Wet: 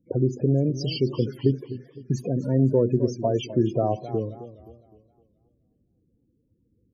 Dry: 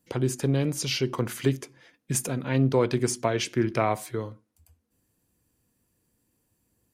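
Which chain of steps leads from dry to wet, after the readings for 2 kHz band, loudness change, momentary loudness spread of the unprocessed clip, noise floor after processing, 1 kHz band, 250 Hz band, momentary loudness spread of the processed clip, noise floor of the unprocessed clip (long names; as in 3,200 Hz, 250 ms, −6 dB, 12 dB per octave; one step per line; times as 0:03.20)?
−13.0 dB, +2.0 dB, 11 LU, −70 dBFS, −2.5 dB, +3.0 dB, 13 LU, −74 dBFS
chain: running median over 5 samples
spectral peaks only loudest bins 16
in parallel at +1 dB: downward compressor, threshold −29 dBFS, peak gain reduction 11 dB
on the sum: flat-topped bell 1,500 Hz −13.5 dB
feedback echo with a swinging delay time 259 ms, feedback 41%, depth 149 cents, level −14 dB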